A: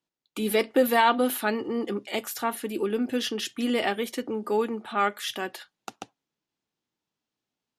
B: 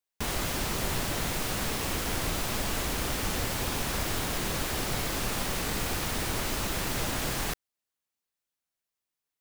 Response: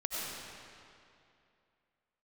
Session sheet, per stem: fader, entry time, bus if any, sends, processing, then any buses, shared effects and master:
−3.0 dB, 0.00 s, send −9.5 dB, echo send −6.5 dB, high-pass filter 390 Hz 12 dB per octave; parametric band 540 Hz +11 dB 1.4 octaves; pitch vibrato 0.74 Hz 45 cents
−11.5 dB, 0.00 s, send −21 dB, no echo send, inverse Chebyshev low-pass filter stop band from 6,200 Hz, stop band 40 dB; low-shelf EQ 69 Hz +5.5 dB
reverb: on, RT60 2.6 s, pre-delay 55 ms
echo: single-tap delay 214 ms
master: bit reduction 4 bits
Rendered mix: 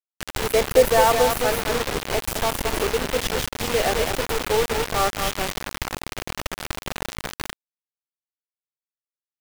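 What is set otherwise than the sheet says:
stem A: send off
stem B −11.5 dB → −1.0 dB

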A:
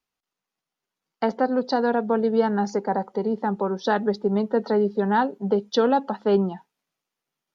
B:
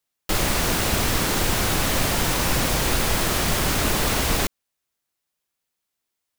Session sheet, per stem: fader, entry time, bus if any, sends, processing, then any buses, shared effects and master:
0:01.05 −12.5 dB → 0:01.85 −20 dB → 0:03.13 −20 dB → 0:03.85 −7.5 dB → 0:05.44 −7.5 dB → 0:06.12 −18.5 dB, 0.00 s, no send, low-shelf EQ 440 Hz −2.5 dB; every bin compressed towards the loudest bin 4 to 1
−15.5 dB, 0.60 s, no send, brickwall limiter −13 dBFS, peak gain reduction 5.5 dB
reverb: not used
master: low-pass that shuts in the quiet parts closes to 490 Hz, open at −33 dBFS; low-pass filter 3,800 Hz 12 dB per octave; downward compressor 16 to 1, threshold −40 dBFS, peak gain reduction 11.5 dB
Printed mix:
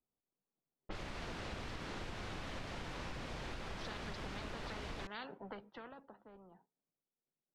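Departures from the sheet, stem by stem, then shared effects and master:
stem A −12.5 dB → −19.0 dB
stem B: missing brickwall limiter −13 dBFS, peak gain reduction 5.5 dB

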